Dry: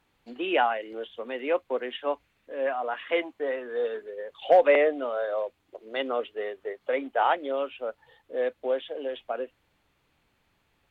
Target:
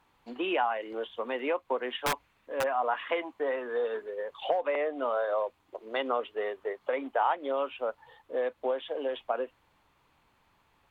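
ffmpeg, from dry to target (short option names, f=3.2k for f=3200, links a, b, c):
-filter_complex "[0:a]asplit=3[a][b][c];[a]afade=t=out:st=1.97:d=0.02[d];[b]aeval=exprs='(mod(13.3*val(0)+1,2)-1)/13.3':c=same,afade=t=in:st=1.97:d=0.02,afade=t=out:st=2.62:d=0.02[e];[c]afade=t=in:st=2.62:d=0.02[f];[d][e][f]amix=inputs=3:normalize=0,acompressor=threshold=-27dB:ratio=16,equalizer=f=1k:w=1.9:g=9"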